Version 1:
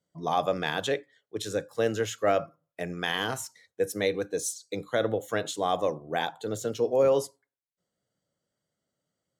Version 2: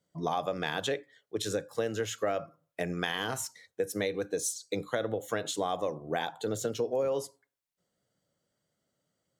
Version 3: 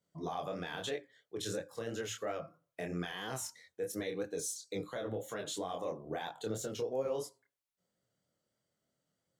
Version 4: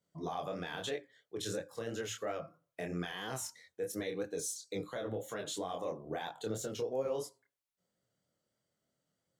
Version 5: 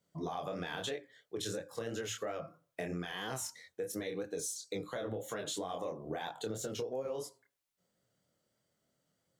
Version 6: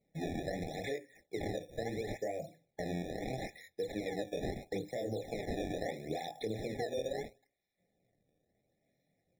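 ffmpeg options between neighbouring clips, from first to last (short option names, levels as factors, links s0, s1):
-af "acompressor=threshold=0.0282:ratio=5,volume=1.41"
-af "alimiter=level_in=1.06:limit=0.0631:level=0:latency=1:release=13,volume=0.944,flanger=delay=22.5:depth=4.8:speed=3,volume=0.891"
-af anull
-af "acompressor=threshold=0.0112:ratio=6,volume=1.58"
-filter_complex "[0:a]acrusher=samples=24:mix=1:aa=0.000001:lfo=1:lforange=38.4:lforate=0.75,acrossover=split=7200[s0][s1];[s1]acompressor=threshold=0.00141:ratio=4:attack=1:release=60[s2];[s0][s2]amix=inputs=2:normalize=0,afftfilt=real='re*eq(mod(floor(b*sr/1024/840),2),0)':imag='im*eq(mod(floor(b*sr/1024/840),2),0)':win_size=1024:overlap=0.75,volume=1.19"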